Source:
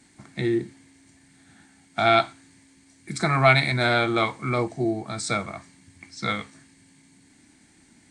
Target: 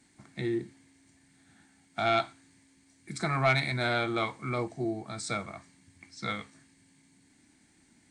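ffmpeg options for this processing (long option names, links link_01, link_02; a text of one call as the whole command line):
ffmpeg -i in.wav -af "asoftclip=type=tanh:threshold=-7.5dB,volume=-7dB" out.wav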